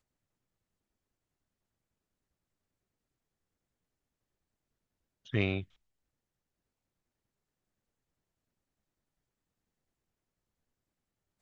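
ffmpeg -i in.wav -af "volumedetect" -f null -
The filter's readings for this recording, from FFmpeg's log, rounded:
mean_volume: -46.0 dB
max_volume: -14.1 dB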